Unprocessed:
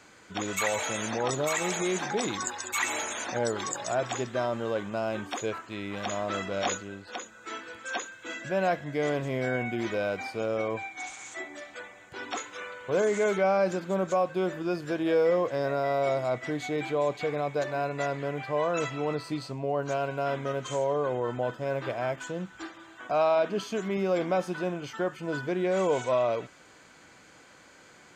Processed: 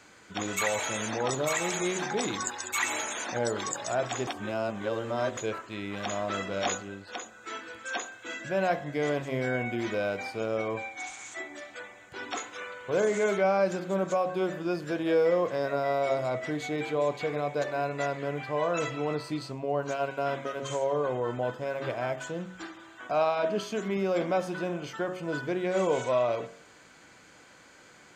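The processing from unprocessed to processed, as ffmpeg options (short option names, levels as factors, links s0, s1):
-filter_complex "[0:a]asplit=3[s0][s1][s2];[s0]atrim=end=4.272[s3];[s1]atrim=start=4.268:end=5.372,asetpts=PTS-STARTPTS,areverse[s4];[s2]atrim=start=5.368[s5];[s3][s4]acrossfade=d=0.004:c1=hsin:c2=hsin[s6];[s6][s5]acrossfade=d=0.004:c1=hsin:c2=hsin,bandreject=f=45.81:t=h:w=4,bandreject=f=91.62:t=h:w=4,bandreject=f=137.43:t=h:w=4,bandreject=f=183.24:t=h:w=4,bandreject=f=229.05:t=h:w=4,bandreject=f=274.86:t=h:w=4,bandreject=f=320.67:t=h:w=4,bandreject=f=366.48:t=h:w=4,bandreject=f=412.29:t=h:w=4,bandreject=f=458.1:t=h:w=4,bandreject=f=503.91:t=h:w=4,bandreject=f=549.72:t=h:w=4,bandreject=f=595.53:t=h:w=4,bandreject=f=641.34:t=h:w=4,bandreject=f=687.15:t=h:w=4,bandreject=f=732.96:t=h:w=4,bandreject=f=778.77:t=h:w=4,bandreject=f=824.58:t=h:w=4,bandreject=f=870.39:t=h:w=4,bandreject=f=916.2:t=h:w=4,bandreject=f=962.01:t=h:w=4,bandreject=f=1007.82:t=h:w=4,bandreject=f=1053.63:t=h:w=4,bandreject=f=1099.44:t=h:w=4,bandreject=f=1145.25:t=h:w=4,bandreject=f=1191.06:t=h:w=4,bandreject=f=1236.87:t=h:w=4,bandreject=f=1282.68:t=h:w=4"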